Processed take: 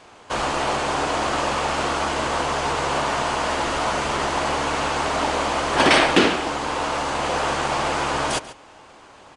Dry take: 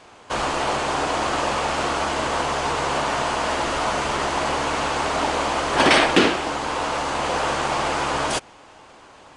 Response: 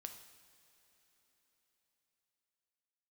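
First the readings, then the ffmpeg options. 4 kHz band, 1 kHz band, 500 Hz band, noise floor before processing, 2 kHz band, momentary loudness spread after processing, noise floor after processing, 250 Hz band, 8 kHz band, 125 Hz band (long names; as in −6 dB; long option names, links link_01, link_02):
0.0 dB, 0.0 dB, 0.0 dB, −48 dBFS, 0.0 dB, 7 LU, −47 dBFS, 0.0 dB, 0.0 dB, +1.0 dB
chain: -filter_complex "[0:a]asplit=2[link_01][link_02];[link_02]adelay=139.9,volume=-15dB,highshelf=frequency=4000:gain=-3.15[link_03];[link_01][link_03]amix=inputs=2:normalize=0"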